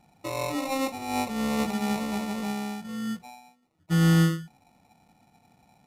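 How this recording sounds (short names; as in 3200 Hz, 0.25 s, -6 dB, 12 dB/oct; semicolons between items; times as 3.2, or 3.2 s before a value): aliases and images of a low sample rate 1600 Hz, jitter 0%; Vorbis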